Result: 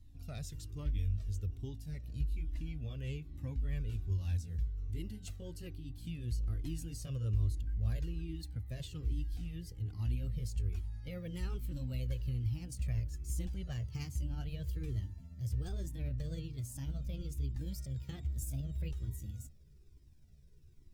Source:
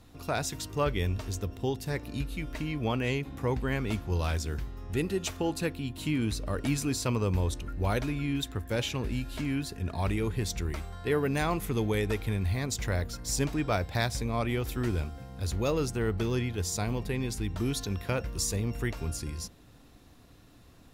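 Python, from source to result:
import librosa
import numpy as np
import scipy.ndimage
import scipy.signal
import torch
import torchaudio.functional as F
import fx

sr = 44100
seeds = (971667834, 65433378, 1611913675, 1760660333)

y = fx.pitch_glide(x, sr, semitones=6.0, runs='starting unshifted')
y = fx.tone_stack(y, sr, knobs='10-0-1')
y = fx.comb_cascade(y, sr, direction='falling', hz=1.2)
y = F.gain(torch.from_numpy(y), 10.5).numpy()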